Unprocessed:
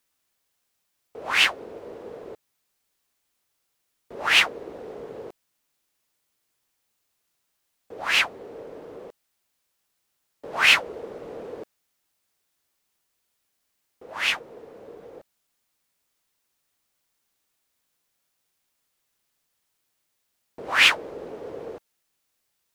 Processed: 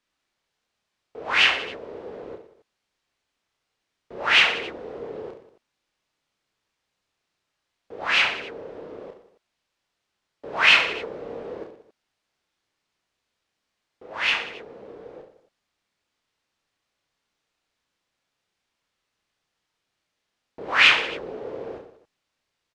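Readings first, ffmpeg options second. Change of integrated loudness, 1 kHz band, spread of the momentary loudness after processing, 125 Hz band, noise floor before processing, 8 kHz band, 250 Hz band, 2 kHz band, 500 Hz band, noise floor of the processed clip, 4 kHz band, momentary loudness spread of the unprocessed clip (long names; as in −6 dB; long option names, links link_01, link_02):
+1.0 dB, +2.0 dB, 23 LU, +2.0 dB, −76 dBFS, −6.0 dB, +2.0 dB, +2.0 dB, +2.5 dB, −81 dBFS, +1.5 dB, 23 LU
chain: -af "lowpass=4600,aecho=1:1:30|69|119.7|185.6|271.3:0.631|0.398|0.251|0.158|0.1"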